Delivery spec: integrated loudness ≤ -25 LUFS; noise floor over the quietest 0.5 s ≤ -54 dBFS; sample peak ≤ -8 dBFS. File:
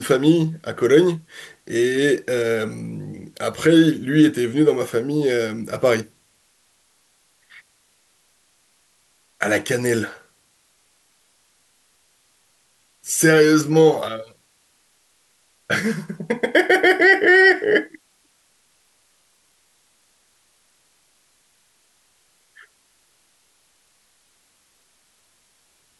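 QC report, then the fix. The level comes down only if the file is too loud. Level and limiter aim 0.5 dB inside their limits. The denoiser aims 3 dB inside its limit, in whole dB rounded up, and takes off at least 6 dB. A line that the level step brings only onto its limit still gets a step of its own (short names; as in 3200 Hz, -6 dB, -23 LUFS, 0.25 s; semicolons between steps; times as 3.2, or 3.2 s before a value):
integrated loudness -18.0 LUFS: fail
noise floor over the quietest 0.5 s -62 dBFS: OK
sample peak -4.0 dBFS: fail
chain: gain -7.5 dB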